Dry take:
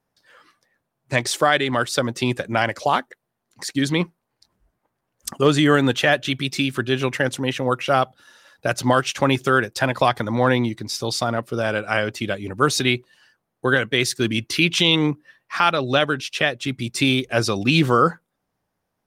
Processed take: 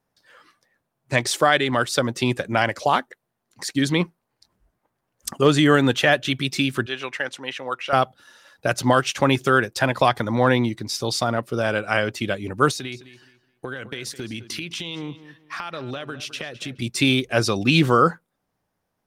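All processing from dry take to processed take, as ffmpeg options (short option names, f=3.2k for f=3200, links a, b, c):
-filter_complex "[0:a]asettb=1/sr,asplit=3[a][b][c];[a]atrim=end=6.864[d];[b]atrim=start=6.86:end=7.93,asetpts=PTS-STARTPTS,afade=t=in:d=0.004:c=qsin,afade=t=out:st=1.066:d=0.004:c=qsin,highpass=f=1.4k:p=1,aemphasis=mode=reproduction:type=50fm[e];[c]atrim=start=7.926[f];[d][e]acrossfade=d=0.004:c1=hsin:c2=qsin[g];[g][f]acrossfade=d=0.004:c1=qsin:c2=hsin,asettb=1/sr,asplit=3[h][i][j];[h]atrim=end=12.714[k];[i]atrim=start=12.71:end=16.82,asetpts=PTS-STARTPTS,afade=t=in:d=0.004:c=qsin,afade=t=out:st=4.106:d=0.004:c=qsin,acompressor=threshold=-27dB:ratio=12:attack=3.2:release=140:knee=1:detection=peak,asplit=2[l][m];[m]adelay=211,lowpass=f=5k:p=1,volume=-14.5dB,asplit=2[n][o];[o]adelay=211,lowpass=f=5k:p=1,volume=0.28,asplit=2[p][q];[q]adelay=211,lowpass=f=5k:p=1,volume=0.28[r];[l][n][p][r]amix=inputs=4:normalize=0,atrim=end_sample=181251[s];[j]atrim=start=16.816[t];[k][s]acrossfade=d=0.004:c1=hsin:c2=qsin[u];[u][t]acrossfade=d=0.004:c1=qsin:c2=hsin"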